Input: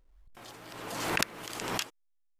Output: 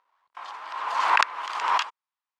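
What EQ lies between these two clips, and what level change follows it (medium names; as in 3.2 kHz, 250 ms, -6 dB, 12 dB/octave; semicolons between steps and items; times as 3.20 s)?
resonant high-pass 1 kHz, resonance Q 4.9; low-pass 3.9 kHz 12 dB/octave; +5.5 dB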